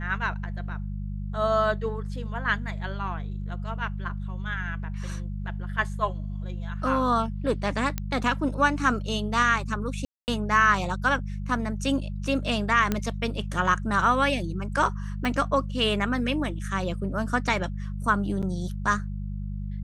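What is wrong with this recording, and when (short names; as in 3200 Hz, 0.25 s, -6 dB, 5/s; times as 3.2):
hum 50 Hz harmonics 4 -32 dBFS
7.98 pop -14 dBFS
10.05–10.28 gap 0.229 s
12.92 pop -11 dBFS
15.25 pop -16 dBFS
18.42–18.43 gap 7.5 ms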